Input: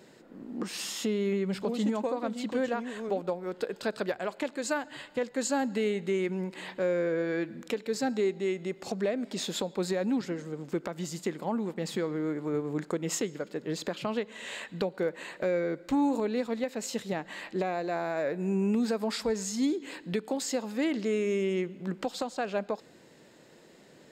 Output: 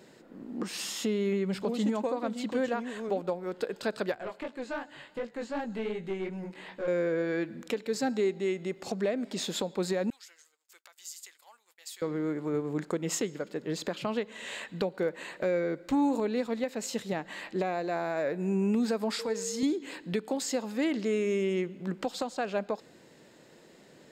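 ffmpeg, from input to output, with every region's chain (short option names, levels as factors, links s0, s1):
-filter_complex "[0:a]asettb=1/sr,asplit=3[s0][s1][s2];[s0]atrim=end=4.154[s3];[s1]atrim=start=4.15:end=6.88,asetpts=PTS-STARTPTS,afade=t=in:d=0.004:c=qsin,afade=t=out:st=2.726:d=0.004:c=qsin,acrossover=split=3600[s4][s5];[s5]acompressor=threshold=0.00141:ratio=4:attack=1:release=60[s6];[s4][s6]amix=inputs=2:normalize=0,flanger=delay=17:depth=5.2:speed=2.7,aeval=exprs='(tanh(20*val(0)+0.3)-tanh(0.3))/20':c=same[s7];[s2]atrim=start=6.876[s8];[s3][s7]acrossfade=d=0.004:c1=hsin:c2=qsin[s9];[s9][s8]acrossfade=d=0.004:c1=qsin:c2=hsin,asettb=1/sr,asplit=3[s10][s11][s12];[s10]atrim=end=10.104[s13];[s11]atrim=start=10.1:end=12.02,asetpts=PTS-STARTPTS,afade=t=in:d=0.004:c=qsin,afade=t=out:st=1.916:d=0.004:c=qsin,highpass=820,aderivative,agate=range=0.0224:threshold=0.00112:ratio=3:release=100:detection=peak[s14];[s12]atrim=start=12.016[s15];[s13][s14]acrossfade=d=0.004:c1=hsin:c2=qsin[s16];[s16][s15]acrossfade=d=0.004:c1=qsin:c2=hsin,asettb=1/sr,asplit=3[s17][s18][s19];[s17]atrim=end=19.194[s20];[s18]atrim=start=19.19:end=19.63,asetpts=PTS-STARTPTS,afade=t=in:d=0.004:c=qsin,afade=t=out:st=0.436:d=0.004:c=qsin,highpass=f=350:p=1,bandreject=f=730:w=9.9,aeval=exprs='val(0)+0.0158*sin(2*PI*460*n/s)':c=same[s21];[s19]atrim=start=19.626[s22];[s20][s21]acrossfade=d=0.004:c1=hsin:c2=qsin[s23];[s23][s22]acrossfade=d=0.004:c1=qsin:c2=hsin"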